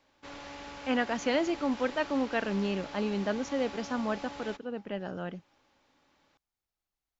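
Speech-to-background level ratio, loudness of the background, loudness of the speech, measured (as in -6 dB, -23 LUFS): 11.5 dB, -44.0 LUFS, -32.5 LUFS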